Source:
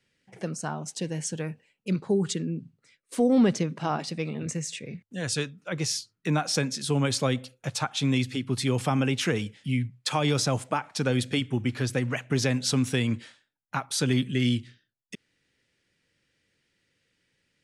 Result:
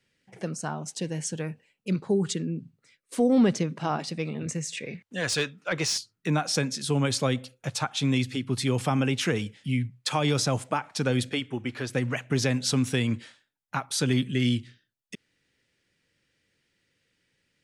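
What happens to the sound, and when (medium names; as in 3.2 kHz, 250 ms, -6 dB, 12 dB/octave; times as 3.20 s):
4.77–5.98 s: overdrive pedal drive 14 dB, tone 3.9 kHz, clips at -14 dBFS
11.29–11.95 s: tone controls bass -9 dB, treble -5 dB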